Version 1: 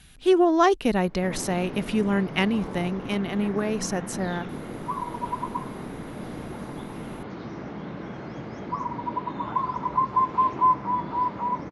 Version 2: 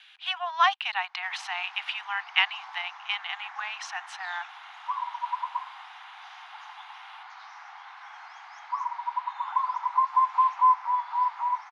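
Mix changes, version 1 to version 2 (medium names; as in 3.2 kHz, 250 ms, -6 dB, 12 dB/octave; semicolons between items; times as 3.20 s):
speech: add resonant low-pass 3.1 kHz, resonance Q 2.1; master: add steep high-pass 760 Hz 96 dB/octave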